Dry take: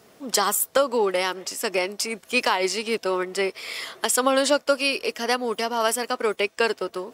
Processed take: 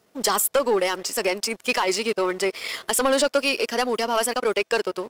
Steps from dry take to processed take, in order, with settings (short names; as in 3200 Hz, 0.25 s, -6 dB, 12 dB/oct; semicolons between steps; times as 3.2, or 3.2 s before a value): tempo 1.4×; sample leveller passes 2; gain -5 dB